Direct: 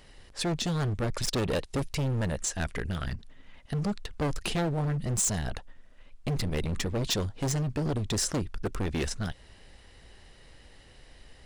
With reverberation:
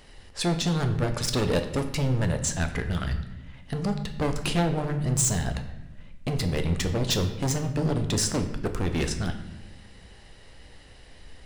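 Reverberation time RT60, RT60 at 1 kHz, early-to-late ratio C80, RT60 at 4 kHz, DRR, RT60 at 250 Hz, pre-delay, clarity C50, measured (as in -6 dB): 1.0 s, 0.80 s, 12.0 dB, 0.75 s, 6.0 dB, 1.7 s, 7 ms, 10.0 dB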